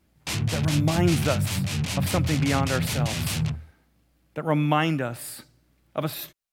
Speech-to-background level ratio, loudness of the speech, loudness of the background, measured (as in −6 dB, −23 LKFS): −0.5 dB, −27.5 LKFS, −27.0 LKFS